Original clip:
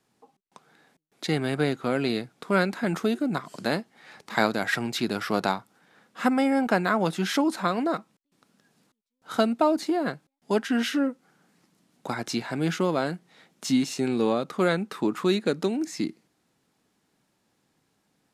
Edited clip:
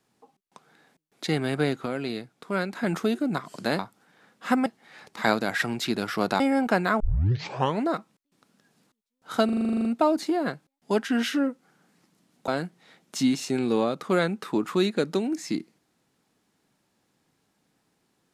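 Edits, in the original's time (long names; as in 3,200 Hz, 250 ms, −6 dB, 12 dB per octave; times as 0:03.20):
0:01.86–0:02.75: clip gain −5 dB
0:05.53–0:06.40: move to 0:03.79
0:07.00: tape start 0.85 s
0:09.45: stutter 0.04 s, 11 plays
0:12.08–0:12.97: remove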